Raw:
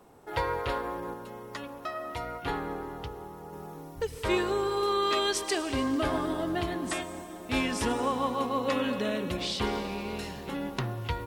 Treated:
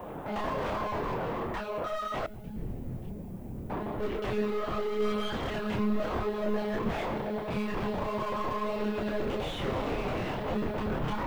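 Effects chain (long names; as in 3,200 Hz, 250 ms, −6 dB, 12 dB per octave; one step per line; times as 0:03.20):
sub-octave generator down 2 octaves, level −2 dB
brickwall limiter −25 dBFS, peak gain reduction 10.5 dB
flanger 0.27 Hz, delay 2.8 ms, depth 6.5 ms, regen −33%
one-pitch LPC vocoder at 8 kHz 210 Hz
low-shelf EQ 360 Hz +8.5 dB
mid-hump overdrive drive 32 dB, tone 1,200 Hz, clips at −24 dBFS
multi-voice chorus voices 4, 0.71 Hz, delay 28 ms, depth 5 ms
0:02.26–0:03.70: drawn EQ curve 180 Hz 0 dB, 1,200 Hz −28 dB, 2,300 Hz −20 dB
background noise violet −68 dBFS
level +2.5 dB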